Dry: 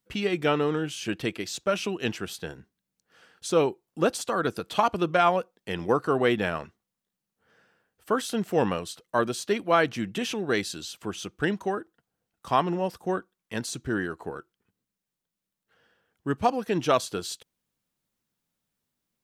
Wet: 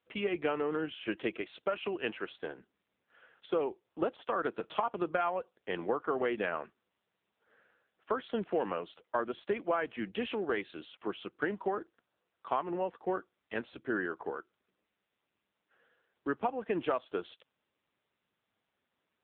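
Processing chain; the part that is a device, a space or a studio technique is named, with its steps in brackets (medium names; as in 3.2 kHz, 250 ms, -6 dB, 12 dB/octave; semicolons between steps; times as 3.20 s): 1.30–2.39 s: dynamic bell 180 Hz, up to -4 dB, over -40 dBFS, Q 1.2; voicemail (band-pass 310–2700 Hz; compression 6:1, threshold -27 dBFS, peak gain reduction 11 dB; AMR-NB 6.7 kbps 8 kHz)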